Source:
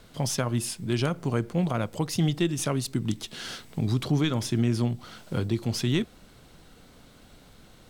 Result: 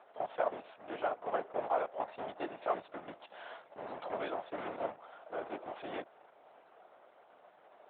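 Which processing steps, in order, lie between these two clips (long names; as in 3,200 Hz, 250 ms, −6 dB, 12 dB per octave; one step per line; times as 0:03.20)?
log-companded quantiser 4 bits
linear-prediction vocoder at 8 kHz whisper
four-pole ladder band-pass 780 Hz, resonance 55%
level +7.5 dB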